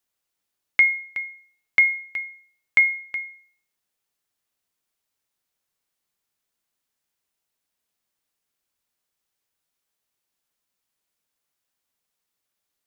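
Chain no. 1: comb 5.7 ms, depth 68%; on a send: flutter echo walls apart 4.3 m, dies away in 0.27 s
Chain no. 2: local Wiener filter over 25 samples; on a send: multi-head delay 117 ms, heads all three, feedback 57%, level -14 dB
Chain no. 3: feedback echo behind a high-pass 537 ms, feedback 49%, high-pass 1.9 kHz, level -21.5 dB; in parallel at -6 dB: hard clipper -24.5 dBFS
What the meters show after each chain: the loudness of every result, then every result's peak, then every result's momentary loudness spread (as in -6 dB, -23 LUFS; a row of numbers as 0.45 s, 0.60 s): -15.5 LUFS, -22.0 LUFS, -20.5 LUFS; -4.5 dBFS, -7.5 dBFS, -7.0 dBFS; 14 LU, 16 LU, 17 LU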